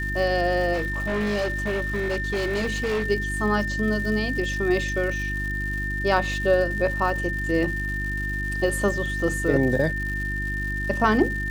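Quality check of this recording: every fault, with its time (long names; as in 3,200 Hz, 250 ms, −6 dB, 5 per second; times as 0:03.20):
surface crackle 240 per second −32 dBFS
mains hum 50 Hz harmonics 7 −30 dBFS
whistle 1,800 Hz −28 dBFS
0:00.73–0:03.08: clipping −21.5 dBFS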